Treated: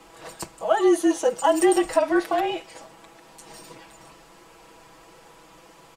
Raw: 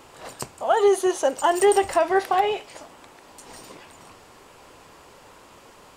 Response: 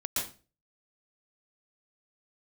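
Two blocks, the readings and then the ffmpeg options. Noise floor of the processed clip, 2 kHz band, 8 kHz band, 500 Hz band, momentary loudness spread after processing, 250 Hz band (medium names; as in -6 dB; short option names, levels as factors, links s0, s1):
-51 dBFS, -1.5 dB, -1.0 dB, -1.5 dB, 15 LU, +7.0 dB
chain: -af "afreqshift=-38,aecho=1:1:6.1:0.86,volume=0.668"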